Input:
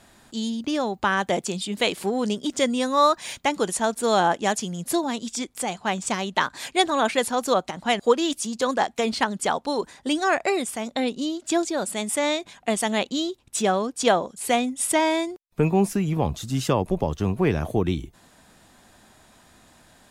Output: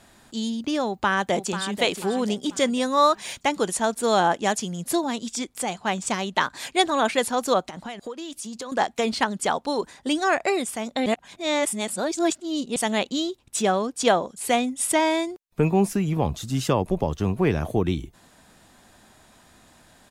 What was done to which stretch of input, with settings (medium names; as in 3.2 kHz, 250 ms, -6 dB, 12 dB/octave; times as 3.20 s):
0.85–1.80 s: echo throw 490 ms, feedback 40%, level -10 dB
7.66–8.72 s: compression 8:1, threshold -31 dBFS
11.06–12.76 s: reverse